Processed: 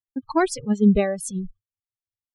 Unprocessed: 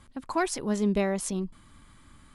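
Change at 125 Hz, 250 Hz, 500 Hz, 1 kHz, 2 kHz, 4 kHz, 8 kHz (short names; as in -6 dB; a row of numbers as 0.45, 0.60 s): +7.5, +8.0, +5.5, +4.5, +3.5, +1.0, +2.0 dB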